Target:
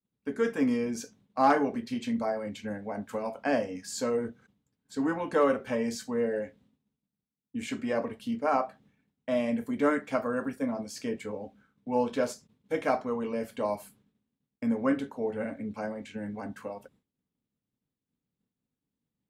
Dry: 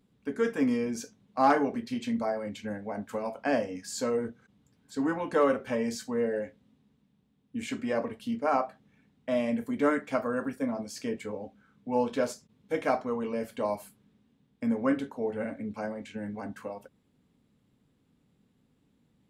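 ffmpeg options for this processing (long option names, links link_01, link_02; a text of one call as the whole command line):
ffmpeg -i in.wav -af "agate=range=-33dB:threshold=-56dB:ratio=3:detection=peak" out.wav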